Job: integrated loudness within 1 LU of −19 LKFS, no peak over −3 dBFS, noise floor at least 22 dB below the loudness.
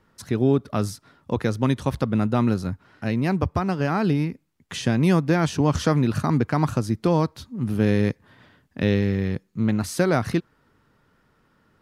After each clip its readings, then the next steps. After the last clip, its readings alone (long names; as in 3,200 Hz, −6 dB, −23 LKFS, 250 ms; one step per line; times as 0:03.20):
integrated loudness −23.5 LKFS; sample peak −8.0 dBFS; target loudness −19.0 LKFS
→ level +4.5 dB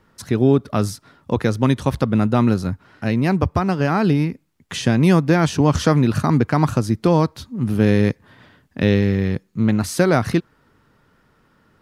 integrated loudness −19.0 LKFS; sample peak −3.5 dBFS; background noise floor −60 dBFS